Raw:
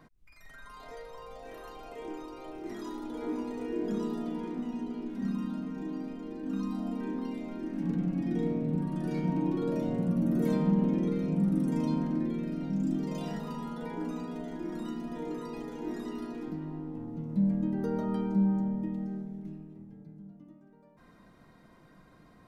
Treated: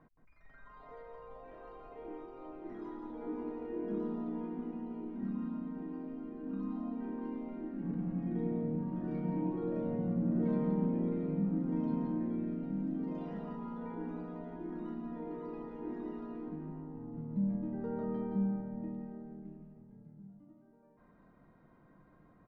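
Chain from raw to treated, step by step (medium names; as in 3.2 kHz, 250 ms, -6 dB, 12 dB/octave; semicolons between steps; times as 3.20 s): low-pass 1.6 kHz 12 dB/octave; on a send: delay 172 ms -5.5 dB; on the sum: trim -6 dB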